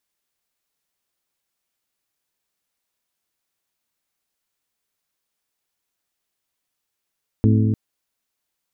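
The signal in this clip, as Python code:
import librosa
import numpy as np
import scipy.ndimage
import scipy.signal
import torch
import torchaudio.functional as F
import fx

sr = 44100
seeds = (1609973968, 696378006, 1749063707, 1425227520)

y = fx.strike_metal(sr, length_s=0.3, level_db=-13, body='bell', hz=108.0, decay_s=3.21, tilt_db=3.5, modes=5)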